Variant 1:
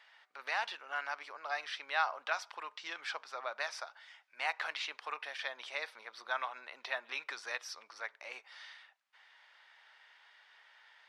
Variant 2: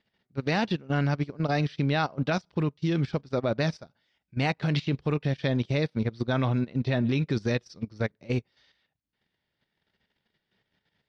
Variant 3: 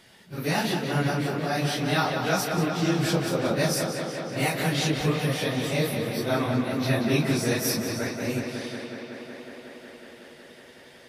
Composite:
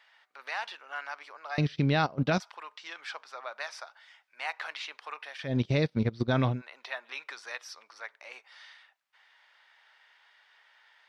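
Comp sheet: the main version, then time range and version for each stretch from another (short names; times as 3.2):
1
1.58–2.4 from 2
5.5–6.54 from 2, crossfade 0.16 s
not used: 3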